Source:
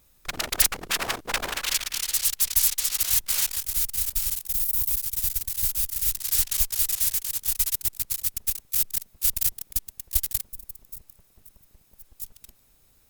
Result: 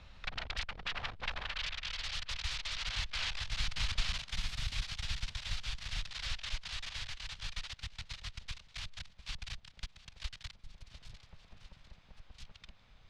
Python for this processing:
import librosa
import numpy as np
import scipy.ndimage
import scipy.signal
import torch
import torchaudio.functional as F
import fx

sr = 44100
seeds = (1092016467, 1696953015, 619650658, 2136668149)

p1 = fx.doppler_pass(x, sr, speed_mps=16, closest_m=5.0, pass_at_s=3.94)
p2 = scipy.signal.sosfilt(scipy.signal.butter(4, 3900.0, 'lowpass', fs=sr, output='sos'), p1)
p3 = fx.peak_eq(p2, sr, hz=340.0, db=-11.5, octaves=1.0)
p4 = fx.rider(p3, sr, range_db=4, speed_s=0.5)
p5 = p3 + (p4 * librosa.db_to_amplitude(-1.0))
p6 = fx.echo_feedback(p5, sr, ms=700, feedback_pct=47, wet_db=-24)
p7 = fx.band_squash(p6, sr, depth_pct=70)
y = p7 * librosa.db_to_amplitude(5.5)